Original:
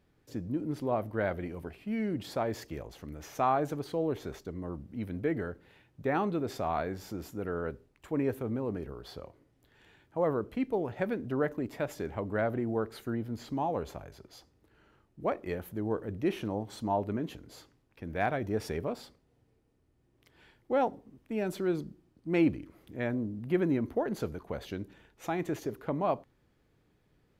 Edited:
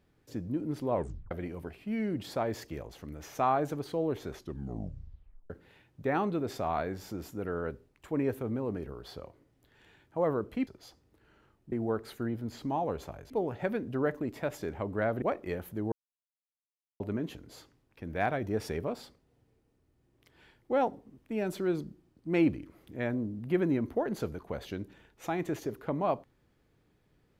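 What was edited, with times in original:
0.92 tape stop 0.39 s
4.33 tape stop 1.17 s
10.67–12.59 swap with 14.17–15.22
15.92–17 mute

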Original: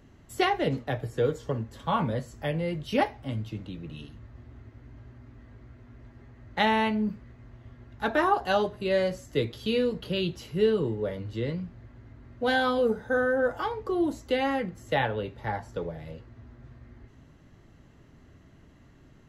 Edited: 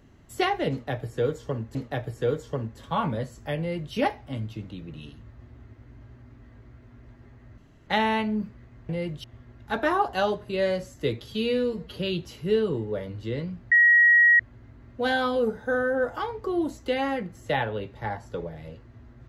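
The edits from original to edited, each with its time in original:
0.71–1.75 loop, 2 plays
2.55–2.9 copy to 7.56
6.54 insert room tone 0.29 s
9.64–10.07 stretch 1.5×
11.82 add tone 1900 Hz -13.5 dBFS 0.68 s

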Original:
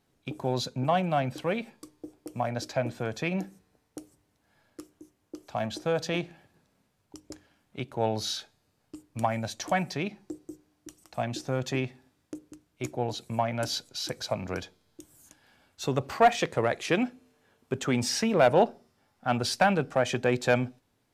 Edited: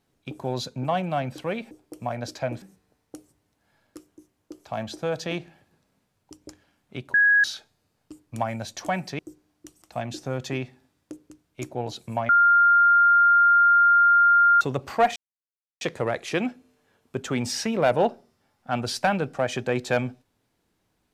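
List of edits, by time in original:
1.71–2.05 cut
2.96–3.45 cut
7.97–8.27 bleep 1660 Hz -14.5 dBFS
10.02–10.41 cut
13.51–15.83 bleep 1400 Hz -13.5 dBFS
16.38 insert silence 0.65 s

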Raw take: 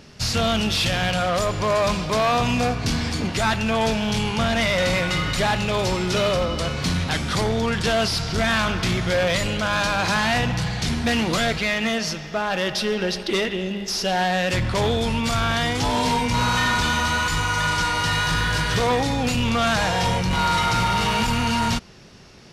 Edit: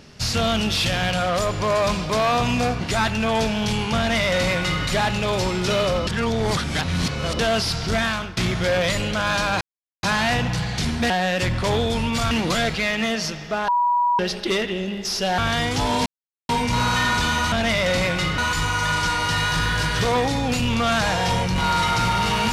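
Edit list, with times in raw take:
2.81–3.27 cut
4.44–5.3 copy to 17.13
6.53–7.85 reverse
8.42–8.83 fade out, to -14.5 dB
10.07 insert silence 0.42 s
12.51–13.02 bleep 970 Hz -16 dBFS
14.21–15.42 move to 11.14
16.1 insert silence 0.43 s

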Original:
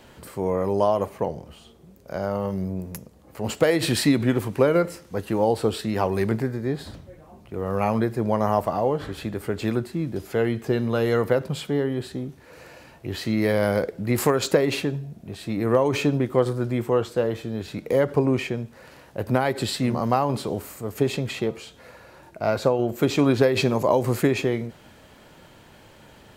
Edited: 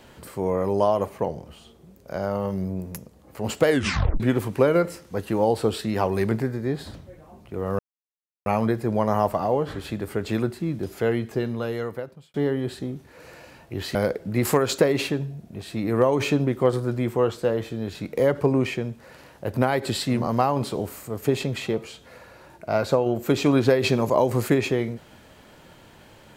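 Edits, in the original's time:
3.68 tape stop 0.52 s
7.79 insert silence 0.67 s
10.38–11.67 fade out
13.28–13.68 cut

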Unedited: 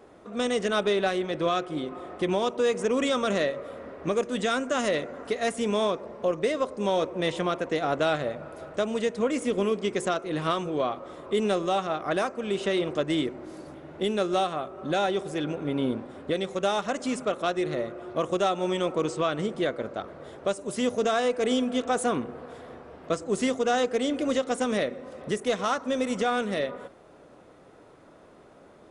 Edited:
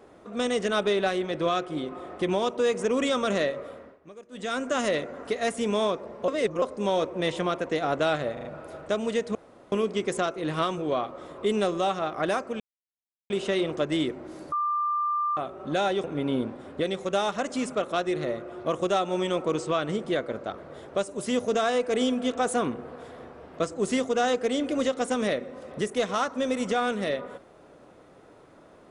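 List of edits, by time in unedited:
3.63–4.66 dip -20 dB, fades 0.37 s linear
6.28–6.62 reverse
8.33 stutter 0.04 s, 4 plays
9.23–9.6 room tone
12.48 insert silence 0.70 s
13.7–14.55 bleep 1190 Hz -23.5 dBFS
15.22–15.54 cut

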